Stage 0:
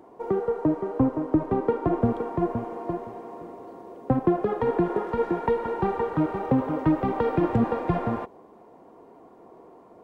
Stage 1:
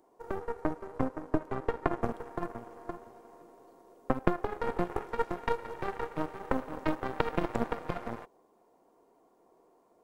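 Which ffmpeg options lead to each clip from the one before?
-af "bass=f=250:g=-6,treble=f=4000:g=13,aeval=exprs='0.299*(cos(1*acos(clip(val(0)/0.299,-1,1)))-cos(1*PI/2))+0.133*(cos(2*acos(clip(val(0)/0.299,-1,1)))-cos(2*PI/2))+0.0944*(cos(3*acos(clip(val(0)/0.299,-1,1)))-cos(3*PI/2))+0.00841*(cos(5*acos(clip(val(0)/0.299,-1,1)))-cos(5*PI/2))':c=same"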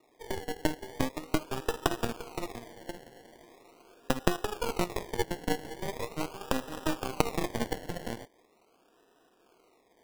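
-af "acrusher=samples=28:mix=1:aa=0.000001:lfo=1:lforange=16.8:lforate=0.41"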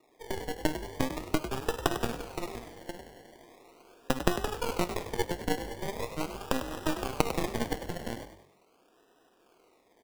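-filter_complex "[0:a]asplit=5[s0][s1][s2][s3][s4];[s1]adelay=99,afreqshift=47,volume=0.316[s5];[s2]adelay=198,afreqshift=94,volume=0.123[s6];[s3]adelay=297,afreqshift=141,volume=0.0479[s7];[s4]adelay=396,afreqshift=188,volume=0.0188[s8];[s0][s5][s6][s7][s8]amix=inputs=5:normalize=0"

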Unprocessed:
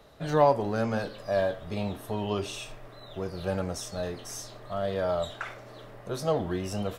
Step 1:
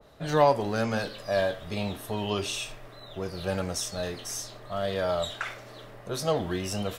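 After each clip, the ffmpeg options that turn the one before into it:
-af "adynamicequalizer=threshold=0.00631:dfrequency=1600:dqfactor=0.7:tfrequency=1600:tqfactor=0.7:attack=5:release=100:ratio=0.375:range=3.5:mode=boostabove:tftype=highshelf"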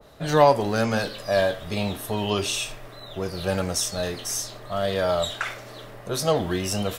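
-af "highshelf=f=6600:g=4.5,volume=1.68"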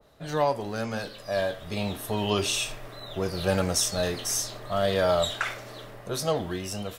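-af "dynaudnorm=f=300:g=9:m=3.55,volume=0.376"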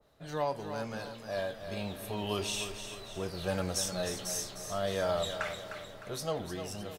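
-af "aecho=1:1:305|610|915|1220|1525:0.355|0.163|0.0751|0.0345|0.0159,volume=0.398"

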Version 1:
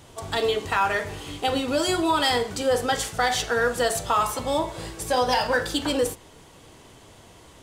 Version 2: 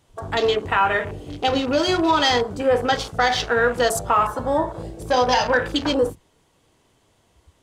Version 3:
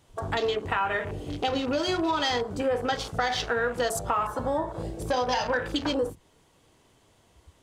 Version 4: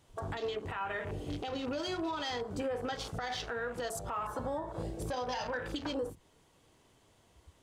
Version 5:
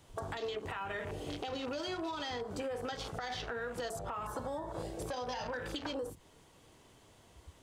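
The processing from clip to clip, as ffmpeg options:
-af "afwtdn=0.02,volume=1.58"
-af "acompressor=threshold=0.0447:ratio=2.5"
-af "alimiter=limit=0.0668:level=0:latency=1:release=171,volume=0.631"
-filter_complex "[0:a]acrossover=split=420|3600[s0][s1][s2];[s0]acompressor=threshold=0.00355:ratio=4[s3];[s1]acompressor=threshold=0.00631:ratio=4[s4];[s2]acompressor=threshold=0.002:ratio=4[s5];[s3][s4][s5]amix=inputs=3:normalize=0,volume=1.68"

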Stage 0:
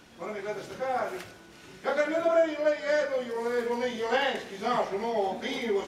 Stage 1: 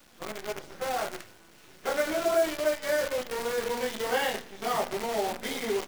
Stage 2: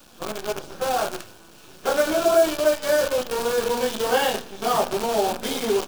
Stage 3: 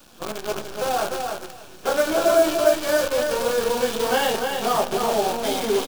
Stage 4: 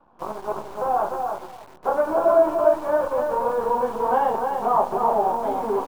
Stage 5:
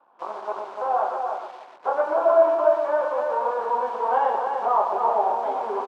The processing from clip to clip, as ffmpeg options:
-af "acrusher=bits=6:dc=4:mix=0:aa=0.000001,bandreject=f=60:t=h:w=6,bandreject=f=120:t=h:w=6,bandreject=f=180:t=h:w=6,bandreject=f=240:t=h:w=6,volume=0.841"
-af "equalizer=f=2000:t=o:w=0.28:g=-12.5,volume=2.37"
-af "aecho=1:1:296|592|888:0.562|0.09|0.0144"
-filter_complex "[0:a]lowpass=f=970:t=q:w=4,asplit=2[s0][s1];[s1]acrusher=bits=5:mix=0:aa=0.000001,volume=0.631[s2];[s0][s2]amix=inputs=2:normalize=0,volume=0.376"
-filter_complex "[0:a]highpass=530,lowpass=4300,asplit=2[s0][s1];[s1]aecho=0:1:121:0.422[s2];[s0][s2]amix=inputs=2:normalize=0"

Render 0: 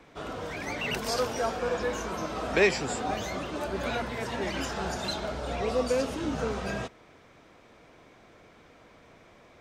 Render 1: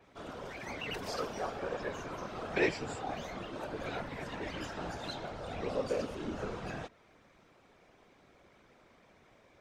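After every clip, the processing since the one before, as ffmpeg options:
-af "afftfilt=real='hypot(re,im)*cos(2*PI*random(0))':imag='hypot(re,im)*sin(2*PI*random(1))':win_size=512:overlap=0.75,adynamicequalizer=threshold=0.00178:dfrequency=4800:dqfactor=0.7:tfrequency=4800:tqfactor=0.7:attack=5:release=100:ratio=0.375:range=3.5:mode=cutabove:tftype=highshelf,volume=0.841"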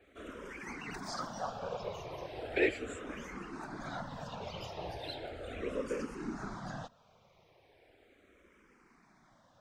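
-filter_complex "[0:a]asplit=2[s0][s1];[s1]afreqshift=-0.37[s2];[s0][s2]amix=inputs=2:normalize=1,volume=1.12"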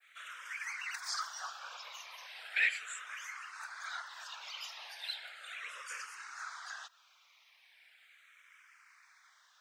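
-af "highpass=f=1400:w=0.5412,highpass=f=1400:w=1.3066,adynamicequalizer=threshold=0.00126:dfrequency=2900:dqfactor=0.82:tfrequency=2900:tqfactor=0.82:attack=5:release=100:ratio=0.375:range=2:mode=cutabove:tftype=bell,volume=2.51"

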